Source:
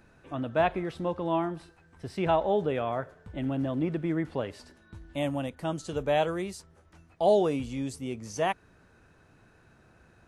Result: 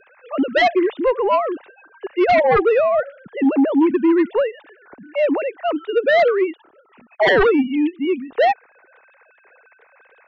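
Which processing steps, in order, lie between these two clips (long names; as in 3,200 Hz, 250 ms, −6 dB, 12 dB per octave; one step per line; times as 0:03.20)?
three sine waves on the formant tracks
harmonic generator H 5 −32 dB, 7 −34 dB, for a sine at −12 dBFS
sine wavefolder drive 12 dB, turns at −10.5 dBFS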